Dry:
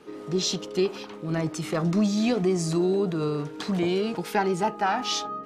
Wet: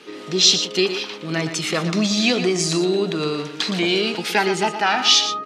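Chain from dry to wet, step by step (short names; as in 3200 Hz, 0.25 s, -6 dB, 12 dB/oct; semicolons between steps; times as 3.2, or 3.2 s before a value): weighting filter D; on a send: echo 0.117 s -10 dB; on the sum: gain +4 dB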